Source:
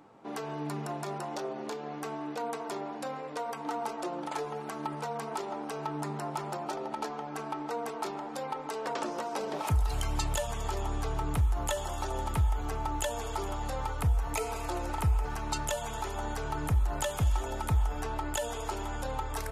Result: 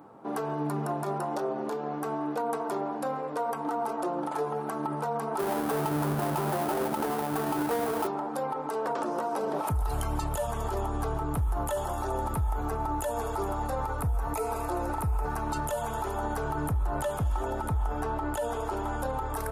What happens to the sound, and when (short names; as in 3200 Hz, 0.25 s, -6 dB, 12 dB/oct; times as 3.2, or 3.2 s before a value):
5.39–8.07 half-waves squared off
11.93–15.42 notch 3100 Hz, Q 11
16.71–18.88 high shelf 9000 Hz -8.5 dB
whole clip: HPF 68 Hz 6 dB/oct; band shelf 3800 Hz -10 dB 2.3 oct; limiter -27.5 dBFS; gain +6 dB